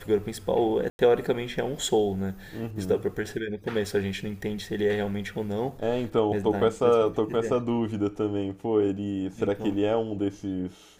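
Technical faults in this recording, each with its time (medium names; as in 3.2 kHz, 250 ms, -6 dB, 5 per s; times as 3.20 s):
0.90–0.99 s: dropout 91 ms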